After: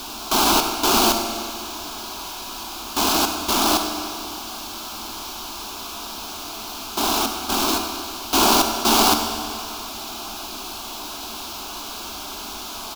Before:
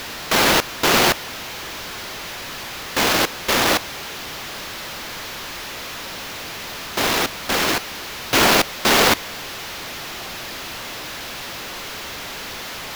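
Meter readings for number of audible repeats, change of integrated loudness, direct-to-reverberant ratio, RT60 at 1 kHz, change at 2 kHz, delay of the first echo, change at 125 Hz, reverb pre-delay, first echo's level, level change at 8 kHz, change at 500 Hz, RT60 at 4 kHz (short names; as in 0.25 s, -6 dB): 1, -1.0 dB, 4.0 dB, 2.3 s, -8.5 dB, 96 ms, -6.0 dB, 13 ms, -14.0 dB, +1.5 dB, -3.0 dB, 2.1 s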